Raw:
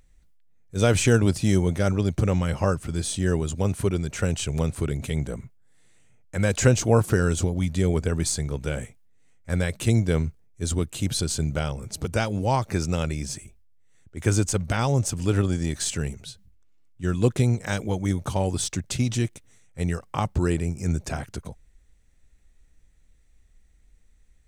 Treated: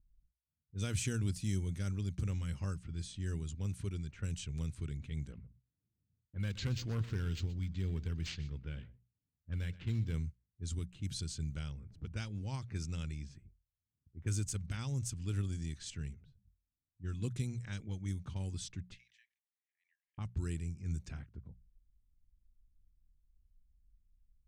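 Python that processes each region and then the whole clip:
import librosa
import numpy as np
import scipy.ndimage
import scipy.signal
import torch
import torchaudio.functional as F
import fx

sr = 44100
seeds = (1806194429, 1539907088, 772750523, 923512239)

y = fx.chain(x, sr, fx.clip_hard(threshold_db=-14.0),
    fx.echo_single(ms=123, db=-17.0),
    fx.resample_linear(factor=4), at=(5.32, 10.14))
y = fx.chain(y, sr, fx.brickwall_highpass(low_hz=1600.0),
    fx.pre_swell(db_per_s=80.0), at=(18.94, 20.18))
y = fx.tone_stack(y, sr, knobs='6-0-2')
y = fx.hum_notches(y, sr, base_hz=60, count=3)
y = fx.env_lowpass(y, sr, base_hz=330.0, full_db=-35.5)
y = y * librosa.db_to_amplitude(2.0)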